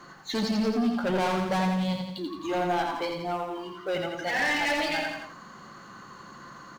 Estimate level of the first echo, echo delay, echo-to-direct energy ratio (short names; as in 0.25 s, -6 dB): -4.5 dB, 85 ms, -3.0 dB